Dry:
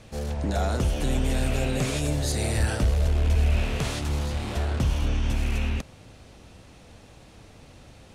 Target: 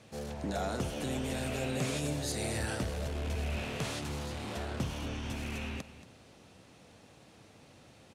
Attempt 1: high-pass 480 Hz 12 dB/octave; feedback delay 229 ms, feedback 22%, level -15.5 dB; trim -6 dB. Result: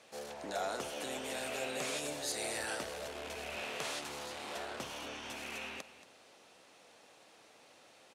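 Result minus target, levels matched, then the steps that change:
125 Hz band -17.0 dB
change: high-pass 120 Hz 12 dB/octave

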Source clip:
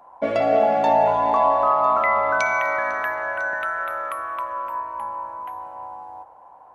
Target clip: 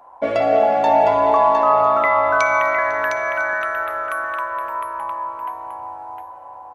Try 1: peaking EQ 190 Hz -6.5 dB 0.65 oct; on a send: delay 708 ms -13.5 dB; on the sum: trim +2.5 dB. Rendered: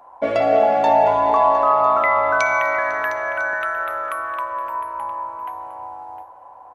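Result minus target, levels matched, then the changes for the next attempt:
echo-to-direct -8 dB
change: delay 708 ms -5.5 dB

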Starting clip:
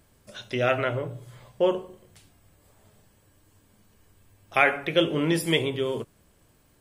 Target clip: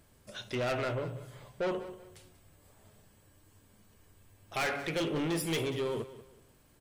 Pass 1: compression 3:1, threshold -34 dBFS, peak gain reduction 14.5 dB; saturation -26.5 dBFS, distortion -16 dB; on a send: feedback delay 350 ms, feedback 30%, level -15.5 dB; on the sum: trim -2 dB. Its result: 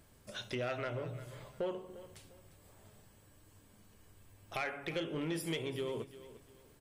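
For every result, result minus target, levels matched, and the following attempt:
echo 162 ms late; compression: peak gain reduction +14.5 dB
compression 3:1, threshold -34 dBFS, peak gain reduction 14.5 dB; saturation -26.5 dBFS, distortion -16 dB; on a send: feedback delay 188 ms, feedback 30%, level -15.5 dB; on the sum: trim -2 dB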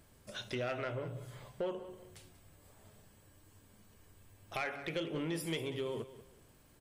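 compression: peak gain reduction +14.5 dB
saturation -26.5 dBFS, distortion -6 dB; on a send: feedback delay 188 ms, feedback 30%, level -15.5 dB; on the sum: trim -2 dB

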